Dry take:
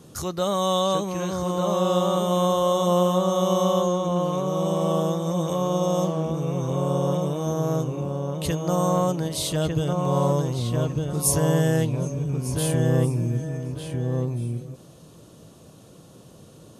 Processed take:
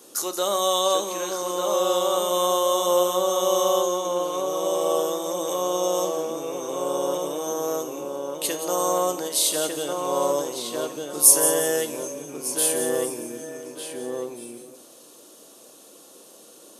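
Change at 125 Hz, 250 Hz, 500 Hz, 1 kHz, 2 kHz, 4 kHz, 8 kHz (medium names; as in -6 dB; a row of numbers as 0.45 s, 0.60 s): -23.5 dB, -7.5 dB, +1.0 dB, +0.5 dB, +2.0 dB, +4.0 dB, +9.0 dB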